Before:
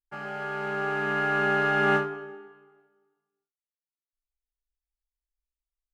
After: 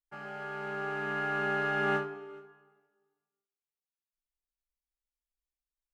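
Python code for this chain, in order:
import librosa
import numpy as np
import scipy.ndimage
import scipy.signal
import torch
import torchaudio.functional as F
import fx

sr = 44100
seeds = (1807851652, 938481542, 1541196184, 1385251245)

y = x + 10.0 ** (-24.0 / 20.0) * np.pad(x, (int(422 * sr / 1000.0), 0))[:len(x)]
y = y * librosa.db_to_amplitude(-6.5)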